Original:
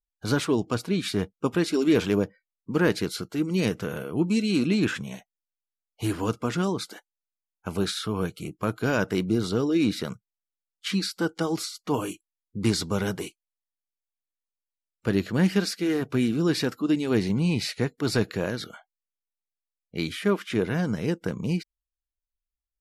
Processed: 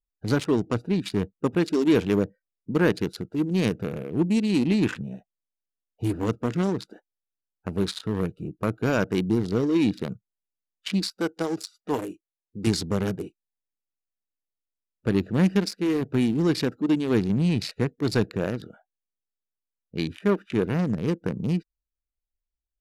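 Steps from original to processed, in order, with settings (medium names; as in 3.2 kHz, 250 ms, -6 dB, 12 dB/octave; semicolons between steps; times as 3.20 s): local Wiener filter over 41 samples; 11.03–12.67 s: tone controls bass -8 dB, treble +4 dB; in parallel at -8.5 dB: saturation -23.5 dBFS, distortion -10 dB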